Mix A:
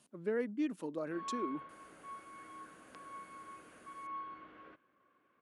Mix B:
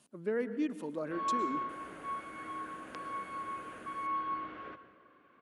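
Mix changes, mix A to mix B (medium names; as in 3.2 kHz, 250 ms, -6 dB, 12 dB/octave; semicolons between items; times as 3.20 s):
background +7.5 dB; reverb: on, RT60 1.2 s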